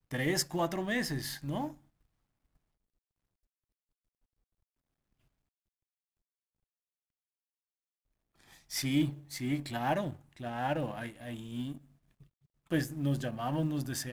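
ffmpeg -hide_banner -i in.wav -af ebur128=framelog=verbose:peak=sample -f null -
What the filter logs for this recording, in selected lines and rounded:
Integrated loudness:
  I:         -34.4 LUFS
  Threshold: -45.0 LUFS
Loudness range:
  LRA:         9.5 LU
  Threshold: -57.3 LUFS
  LRA low:   -44.5 LUFS
  LRA high:  -35.0 LUFS
Sample peak:
  Peak:      -16.4 dBFS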